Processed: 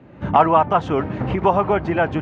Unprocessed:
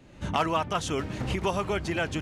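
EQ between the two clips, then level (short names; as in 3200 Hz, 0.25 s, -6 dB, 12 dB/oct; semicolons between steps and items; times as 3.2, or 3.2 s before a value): HPF 90 Hz; LPF 1600 Hz 12 dB/oct; dynamic EQ 810 Hz, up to +7 dB, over -41 dBFS, Q 1.8; +9.0 dB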